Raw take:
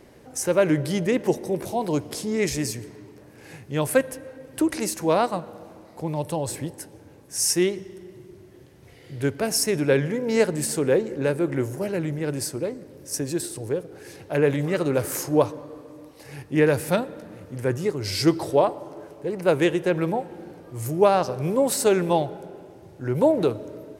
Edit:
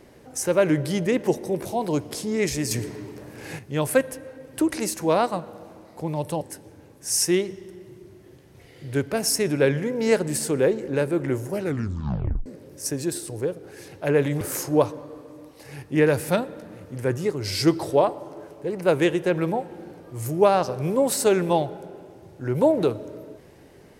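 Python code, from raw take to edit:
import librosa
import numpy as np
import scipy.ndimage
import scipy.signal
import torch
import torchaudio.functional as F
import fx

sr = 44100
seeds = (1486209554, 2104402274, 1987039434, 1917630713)

y = fx.edit(x, sr, fx.clip_gain(start_s=2.71, length_s=0.88, db=7.5),
    fx.cut(start_s=6.41, length_s=0.28),
    fx.tape_stop(start_s=11.87, length_s=0.87),
    fx.cut(start_s=14.69, length_s=0.32), tone=tone)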